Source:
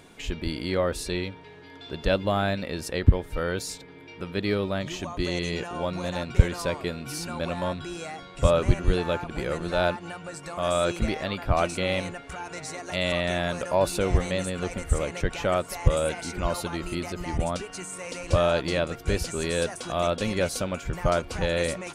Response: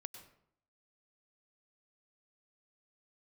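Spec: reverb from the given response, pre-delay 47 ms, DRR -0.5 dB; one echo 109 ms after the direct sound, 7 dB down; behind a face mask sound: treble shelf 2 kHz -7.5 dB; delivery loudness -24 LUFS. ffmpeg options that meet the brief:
-filter_complex "[0:a]aecho=1:1:109:0.447,asplit=2[s0][s1];[1:a]atrim=start_sample=2205,adelay=47[s2];[s1][s2]afir=irnorm=-1:irlink=0,volume=1.78[s3];[s0][s3]amix=inputs=2:normalize=0,highshelf=f=2000:g=-7.5,volume=1.06"

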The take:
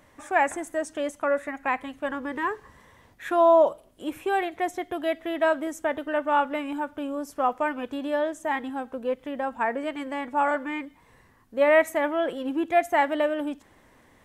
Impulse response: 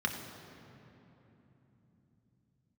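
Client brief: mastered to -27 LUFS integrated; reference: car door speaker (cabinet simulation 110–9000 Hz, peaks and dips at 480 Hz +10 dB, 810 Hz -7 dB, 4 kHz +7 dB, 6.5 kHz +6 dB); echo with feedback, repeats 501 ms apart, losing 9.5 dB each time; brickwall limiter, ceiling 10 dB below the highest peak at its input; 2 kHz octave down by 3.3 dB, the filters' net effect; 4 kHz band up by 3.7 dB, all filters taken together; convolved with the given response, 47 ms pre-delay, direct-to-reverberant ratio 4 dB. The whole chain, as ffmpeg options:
-filter_complex "[0:a]equalizer=f=2000:t=o:g=-5,equalizer=f=4000:t=o:g=4.5,alimiter=limit=0.0944:level=0:latency=1,aecho=1:1:501|1002|1503|2004:0.335|0.111|0.0365|0.012,asplit=2[s0][s1];[1:a]atrim=start_sample=2205,adelay=47[s2];[s1][s2]afir=irnorm=-1:irlink=0,volume=0.299[s3];[s0][s3]amix=inputs=2:normalize=0,highpass=110,equalizer=f=480:t=q:w=4:g=10,equalizer=f=810:t=q:w=4:g=-7,equalizer=f=4000:t=q:w=4:g=7,equalizer=f=6500:t=q:w=4:g=6,lowpass=f=9000:w=0.5412,lowpass=f=9000:w=1.3066,volume=1.12"

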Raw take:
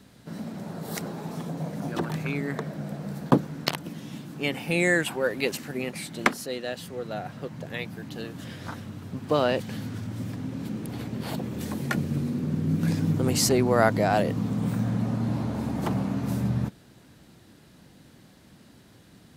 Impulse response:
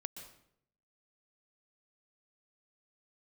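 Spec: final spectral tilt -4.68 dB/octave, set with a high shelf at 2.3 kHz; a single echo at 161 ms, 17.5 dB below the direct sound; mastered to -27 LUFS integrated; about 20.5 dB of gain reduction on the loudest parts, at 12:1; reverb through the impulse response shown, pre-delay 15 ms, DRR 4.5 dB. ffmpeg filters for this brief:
-filter_complex "[0:a]highshelf=f=2300:g=8.5,acompressor=threshold=0.0178:ratio=12,aecho=1:1:161:0.133,asplit=2[s0][s1];[1:a]atrim=start_sample=2205,adelay=15[s2];[s1][s2]afir=irnorm=-1:irlink=0,volume=0.794[s3];[s0][s3]amix=inputs=2:normalize=0,volume=3.55"

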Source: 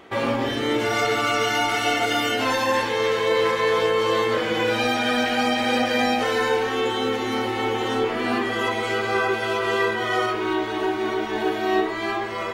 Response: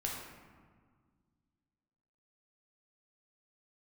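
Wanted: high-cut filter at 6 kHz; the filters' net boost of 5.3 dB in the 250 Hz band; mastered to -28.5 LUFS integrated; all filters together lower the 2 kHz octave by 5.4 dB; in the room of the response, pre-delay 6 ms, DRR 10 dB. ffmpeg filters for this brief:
-filter_complex "[0:a]lowpass=6000,equalizer=f=250:t=o:g=6.5,equalizer=f=2000:t=o:g=-7,asplit=2[s0][s1];[1:a]atrim=start_sample=2205,adelay=6[s2];[s1][s2]afir=irnorm=-1:irlink=0,volume=0.237[s3];[s0][s3]amix=inputs=2:normalize=0,volume=0.422"

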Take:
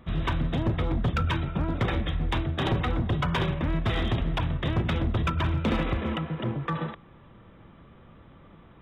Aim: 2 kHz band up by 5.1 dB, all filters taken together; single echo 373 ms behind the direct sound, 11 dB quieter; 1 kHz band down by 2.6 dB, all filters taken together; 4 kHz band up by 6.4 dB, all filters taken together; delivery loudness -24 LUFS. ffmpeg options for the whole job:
-af "equalizer=f=1000:t=o:g=-6,equalizer=f=2000:t=o:g=6.5,equalizer=f=4000:t=o:g=6,aecho=1:1:373:0.282,volume=1.41"

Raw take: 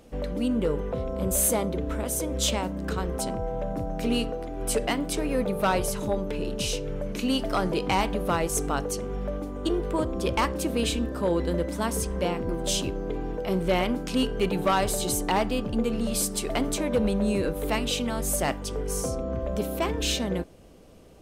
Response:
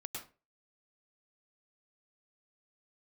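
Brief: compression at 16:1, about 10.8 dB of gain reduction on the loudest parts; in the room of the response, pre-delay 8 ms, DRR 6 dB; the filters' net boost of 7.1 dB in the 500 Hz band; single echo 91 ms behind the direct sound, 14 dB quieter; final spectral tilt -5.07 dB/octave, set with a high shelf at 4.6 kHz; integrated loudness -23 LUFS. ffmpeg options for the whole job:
-filter_complex "[0:a]equalizer=f=500:t=o:g=8.5,highshelf=f=4600:g=-6.5,acompressor=threshold=0.0631:ratio=16,aecho=1:1:91:0.2,asplit=2[s0][s1];[1:a]atrim=start_sample=2205,adelay=8[s2];[s1][s2]afir=irnorm=-1:irlink=0,volume=0.596[s3];[s0][s3]amix=inputs=2:normalize=0,volume=1.78"

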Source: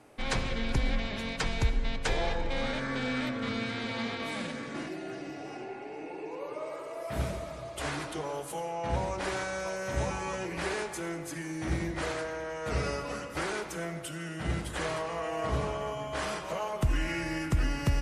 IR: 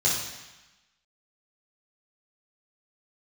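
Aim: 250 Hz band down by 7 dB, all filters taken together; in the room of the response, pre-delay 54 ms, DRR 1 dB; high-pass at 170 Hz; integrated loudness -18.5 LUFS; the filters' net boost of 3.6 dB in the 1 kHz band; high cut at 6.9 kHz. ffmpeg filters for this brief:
-filter_complex "[0:a]highpass=170,lowpass=6900,equalizer=f=250:t=o:g=-8.5,equalizer=f=1000:t=o:g=5,asplit=2[s0][s1];[1:a]atrim=start_sample=2205,adelay=54[s2];[s1][s2]afir=irnorm=-1:irlink=0,volume=0.224[s3];[s0][s3]amix=inputs=2:normalize=0,volume=4.73"

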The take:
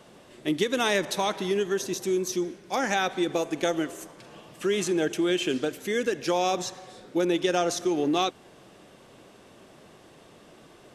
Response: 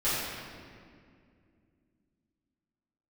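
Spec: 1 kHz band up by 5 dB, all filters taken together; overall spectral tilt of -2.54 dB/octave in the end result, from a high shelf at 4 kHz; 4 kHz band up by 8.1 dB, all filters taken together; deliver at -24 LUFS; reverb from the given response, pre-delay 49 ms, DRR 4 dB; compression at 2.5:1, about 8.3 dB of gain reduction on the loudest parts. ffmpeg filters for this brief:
-filter_complex "[0:a]equalizer=f=1000:t=o:g=6.5,highshelf=f=4000:g=7.5,equalizer=f=4000:t=o:g=5.5,acompressor=threshold=0.0355:ratio=2.5,asplit=2[s0][s1];[1:a]atrim=start_sample=2205,adelay=49[s2];[s1][s2]afir=irnorm=-1:irlink=0,volume=0.168[s3];[s0][s3]amix=inputs=2:normalize=0,volume=1.78"

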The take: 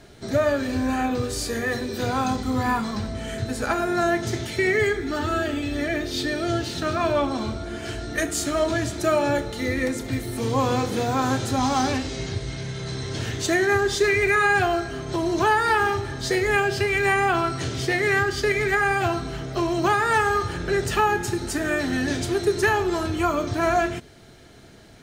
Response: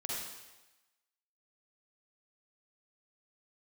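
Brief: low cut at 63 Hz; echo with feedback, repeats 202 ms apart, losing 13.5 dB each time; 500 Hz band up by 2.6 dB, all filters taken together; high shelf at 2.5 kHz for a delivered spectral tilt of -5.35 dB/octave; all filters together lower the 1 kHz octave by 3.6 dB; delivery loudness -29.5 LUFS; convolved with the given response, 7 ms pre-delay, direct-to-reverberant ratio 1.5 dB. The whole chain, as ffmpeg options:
-filter_complex "[0:a]highpass=63,equalizer=f=500:t=o:g=5.5,equalizer=f=1000:t=o:g=-6,highshelf=f=2500:g=-7.5,aecho=1:1:202|404:0.211|0.0444,asplit=2[s0][s1];[1:a]atrim=start_sample=2205,adelay=7[s2];[s1][s2]afir=irnorm=-1:irlink=0,volume=0.631[s3];[s0][s3]amix=inputs=2:normalize=0,volume=0.376"

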